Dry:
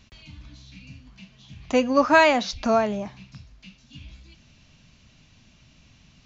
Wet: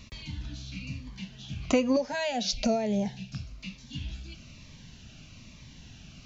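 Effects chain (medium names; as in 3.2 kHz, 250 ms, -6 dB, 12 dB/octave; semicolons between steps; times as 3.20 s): compression 12:1, threshold -26 dBFS, peak gain reduction 15 dB; 1.96–3.32 s: static phaser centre 310 Hz, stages 6; Shepard-style phaser falling 1.1 Hz; trim +6.5 dB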